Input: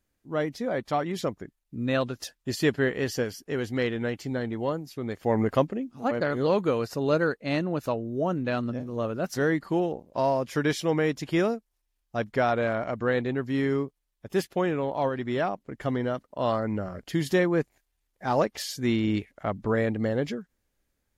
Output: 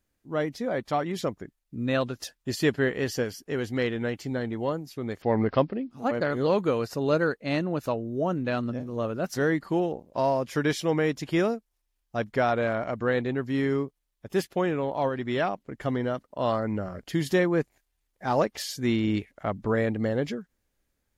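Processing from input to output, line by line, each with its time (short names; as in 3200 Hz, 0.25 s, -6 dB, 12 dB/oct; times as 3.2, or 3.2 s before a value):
5.22–5.91 careless resampling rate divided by 4×, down none, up filtered
15.21–15.76 dynamic EQ 2900 Hz, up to +4 dB, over -45 dBFS, Q 0.77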